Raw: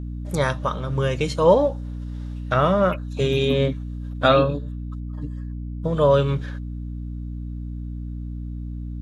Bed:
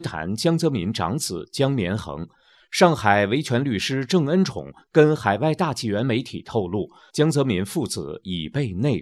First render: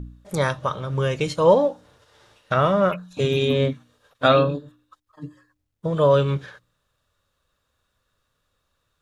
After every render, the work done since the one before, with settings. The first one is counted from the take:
hum removal 60 Hz, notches 5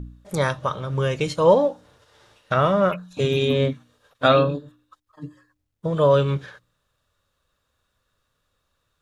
no processing that can be heard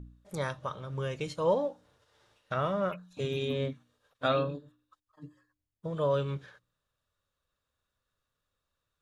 level −11.5 dB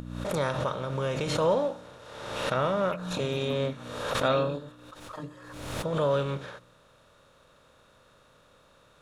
compressor on every frequency bin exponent 0.6
background raised ahead of every attack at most 44 dB per second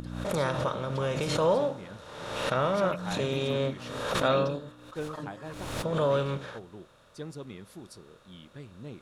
mix in bed −21.5 dB

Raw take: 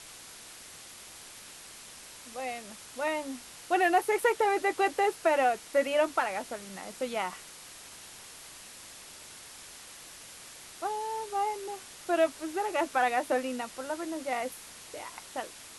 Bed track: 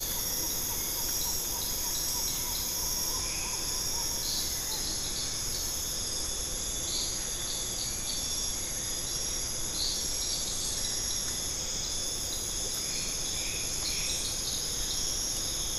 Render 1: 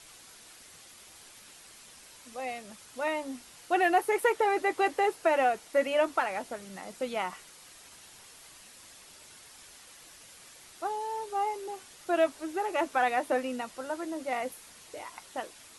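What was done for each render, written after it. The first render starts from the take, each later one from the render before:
broadband denoise 6 dB, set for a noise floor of −49 dBFS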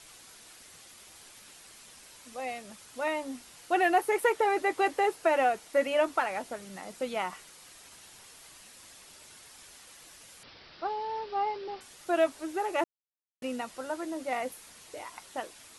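0:10.43–0:11.81: bad sample-rate conversion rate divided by 4×, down none, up filtered
0:12.84–0:13.42: silence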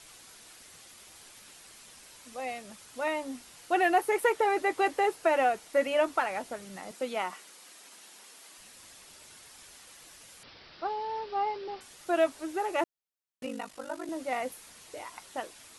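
0:06.91–0:08.58: high-pass filter 200 Hz 24 dB per octave
0:13.45–0:14.09: ring modulation 25 Hz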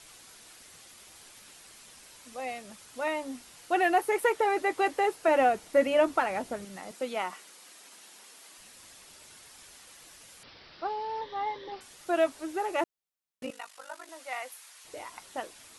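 0:05.28–0:06.65: low-shelf EQ 430 Hz +8 dB
0:11.21–0:11.72: EQ curve with evenly spaced ripples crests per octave 1.1, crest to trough 13 dB
0:13.50–0:14.85: high-pass filter 930 Hz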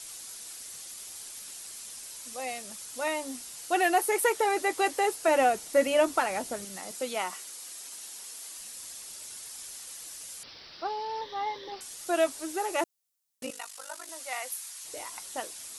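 bass and treble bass −2 dB, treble +12 dB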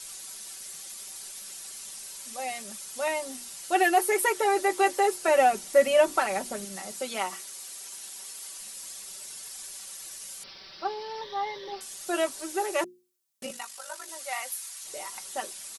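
mains-hum notches 60/120/180/240/300/360 Hz
comb filter 5.2 ms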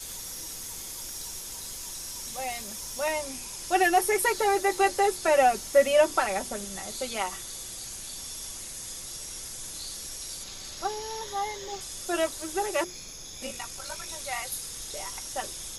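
mix in bed track −9.5 dB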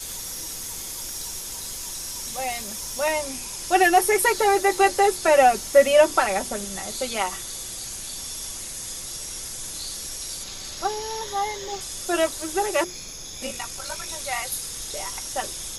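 level +5 dB

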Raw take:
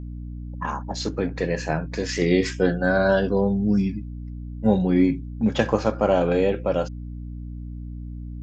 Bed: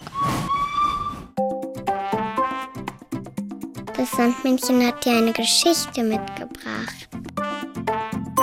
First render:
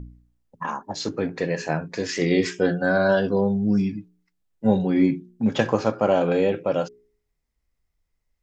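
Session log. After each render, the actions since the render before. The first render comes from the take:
hum removal 60 Hz, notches 7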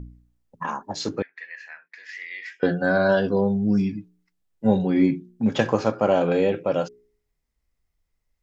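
0:01.22–0:02.63: four-pole ladder band-pass 2,100 Hz, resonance 65%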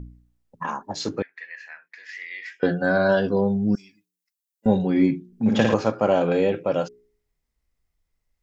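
0:03.75–0:04.66: first difference
0:05.27–0:05.74: flutter between parallel walls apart 9.3 metres, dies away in 0.89 s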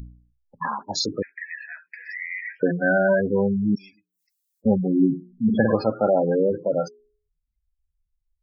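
gate on every frequency bin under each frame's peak −15 dB strong
high-shelf EQ 2,000 Hz +9.5 dB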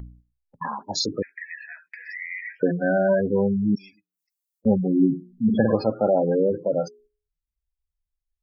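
noise gate −51 dBFS, range −8 dB
dynamic equaliser 1,400 Hz, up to −8 dB, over −41 dBFS, Q 2.1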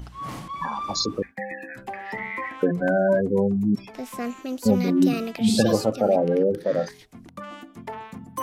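mix in bed −11.5 dB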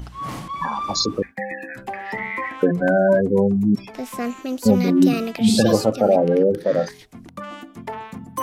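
level +4 dB
brickwall limiter −3 dBFS, peak gain reduction 2.5 dB

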